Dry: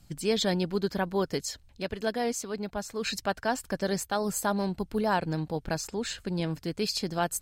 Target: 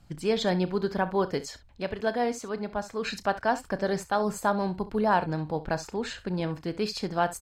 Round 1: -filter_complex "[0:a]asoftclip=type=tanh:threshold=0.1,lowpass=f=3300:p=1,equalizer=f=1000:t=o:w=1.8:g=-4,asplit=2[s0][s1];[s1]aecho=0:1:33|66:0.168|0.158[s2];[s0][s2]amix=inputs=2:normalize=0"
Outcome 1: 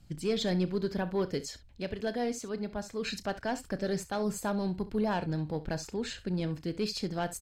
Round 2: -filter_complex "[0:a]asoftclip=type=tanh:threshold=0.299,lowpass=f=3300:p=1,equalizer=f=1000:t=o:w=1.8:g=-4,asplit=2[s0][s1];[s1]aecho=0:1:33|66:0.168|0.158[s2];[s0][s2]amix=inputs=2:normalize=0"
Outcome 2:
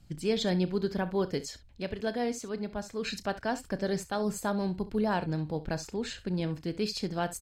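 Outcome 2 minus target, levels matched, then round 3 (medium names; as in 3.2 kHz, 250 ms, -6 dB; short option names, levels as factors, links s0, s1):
1 kHz band -5.0 dB
-filter_complex "[0:a]asoftclip=type=tanh:threshold=0.299,lowpass=f=3300:p=1,equalizer=f=1000:t=o:w=1.8:g=5,asplit=2[s0][s1];[s1]aecho=0:1:33|66:0.168|0.158[s2];[s0][s2]amix=inputs=2:normalize=0"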